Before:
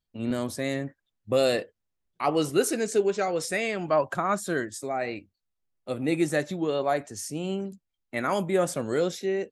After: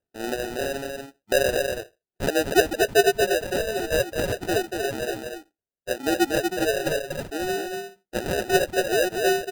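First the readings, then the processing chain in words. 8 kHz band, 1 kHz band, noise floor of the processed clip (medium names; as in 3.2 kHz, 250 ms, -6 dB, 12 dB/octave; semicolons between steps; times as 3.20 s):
+4.0 dB, +2.0 dB, under -85 dBFS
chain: bit-reversed sample order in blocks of 16 samples; ladder high-pass 320 Hz, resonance 55%; comb 2 ms, depth 36%; delay 84 ms -22 dB; in parallel at +1 dB: compression, threshold -37 dBFS, peak gain reduction 17.5 dB; on the sum: sample-and-hold 40×; reverb removal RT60 1.1 s; on a send: delay 237 ms -5 dB; on the sum: trim +5.5 dB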